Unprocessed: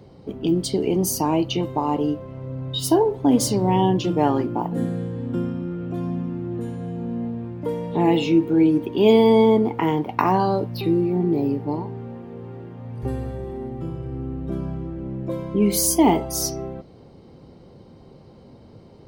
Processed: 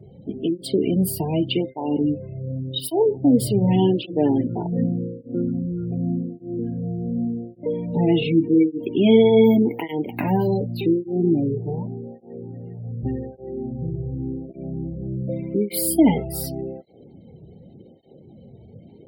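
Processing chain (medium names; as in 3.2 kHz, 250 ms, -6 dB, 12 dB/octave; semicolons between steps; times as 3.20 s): static phaser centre 2.7 kHz, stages 4; 9.44–10.52 s: careless resampling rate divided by 3×, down none, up hold; spectral gate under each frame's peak -30 dB strong; cancelling through-zero flanger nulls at 0.86 Hz, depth 4 ms; trim +4.5 dB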